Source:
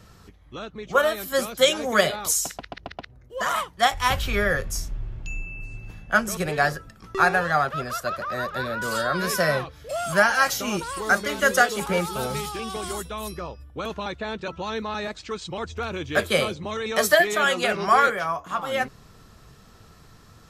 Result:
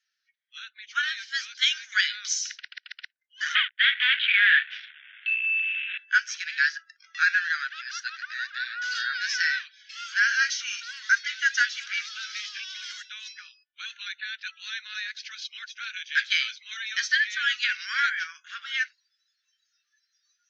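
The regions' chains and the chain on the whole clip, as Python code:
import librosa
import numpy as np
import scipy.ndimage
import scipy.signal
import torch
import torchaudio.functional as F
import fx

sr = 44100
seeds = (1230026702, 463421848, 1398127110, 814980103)

y = fx.chain(x, sr, fx.leveller(passes=5),
    fx.cheby1_bandpass(low_hz=110.0, high_hz=3500.0, order=5), at=(3.55, 5.98))
y = fx.noise_reduce_blind(y, sr, reduce_db=23)
y = scipy.signal.sosfilt(scipy.signal.cheby1(5, 1.0, [1500.0, 6200.0], 'bandpass', fs=sr, output='sos'), y)
y = fx.rider(y, sr, range_db=3, speed_s=0.5)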